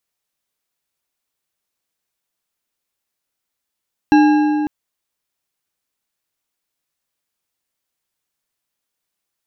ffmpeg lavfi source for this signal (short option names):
-f lavfi -i "aevalsrc='0.447*pow(10,-3*t/3.13)*sin(2*PI*301*t)+0.211*pow(10,-3*t/2.309)*sin(2*PI*829.9*t)+0.1*pow(10,-3*t/1.887)*sin(2*PI*1626.6*t)+0.0473*pow(10,-3*t/1.623)*sin(2*PI*2688.8*t)+0.0224*pow(10,-3*t/1.439)*sin(2*PI*4015.3*t)+0.0106*pow(10,-3*t/1.301)*sin(2*PI*5610.6*t)':d=0.55:s=44100"